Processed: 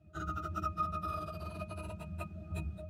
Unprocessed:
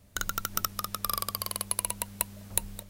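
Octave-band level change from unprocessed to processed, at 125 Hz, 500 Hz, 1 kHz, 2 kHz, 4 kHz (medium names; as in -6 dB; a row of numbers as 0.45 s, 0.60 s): +3.5 dB, -0.5 dB, -1.5 dB, -9.5 dB, -21.0 dB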